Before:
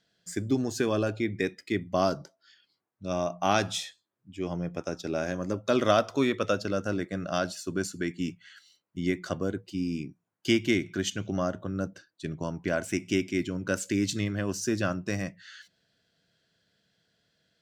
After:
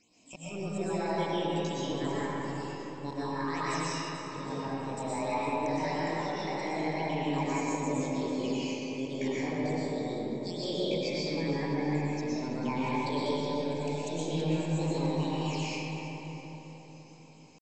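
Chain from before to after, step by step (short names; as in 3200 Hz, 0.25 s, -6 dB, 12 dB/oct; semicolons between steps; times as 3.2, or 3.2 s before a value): in parallel at +2 dB: limiter -18.5 dBFS, peak gain reduction 9 dB; on the sum: auto swell 0.143 s; compressor 8:1, threshold -35 dBFS, peak gain reduction 20.5 dB; phaser stages 8, 1.7 Hz, lowest notch 240–1300 Hz; pitch shift +7.5 st; brick-wall FIR low-pass 8100 Hz; split-band echo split 1000 Hz, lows 0.449 s, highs 0.327 s, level -12.5 dB; digital reverb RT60 4 s, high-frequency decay 0.4×, pre-delay 80 ms, DRR -9.5 dB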